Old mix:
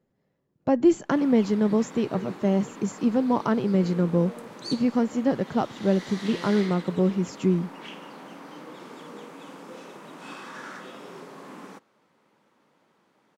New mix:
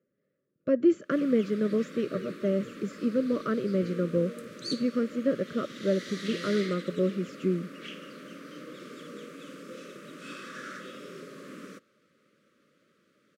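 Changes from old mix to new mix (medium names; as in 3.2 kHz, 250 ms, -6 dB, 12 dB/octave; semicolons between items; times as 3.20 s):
speech: add band-pass filter 750 Hz, Q 0.52; master: add Chebyshev band-stop 590–1200 Hz, order 3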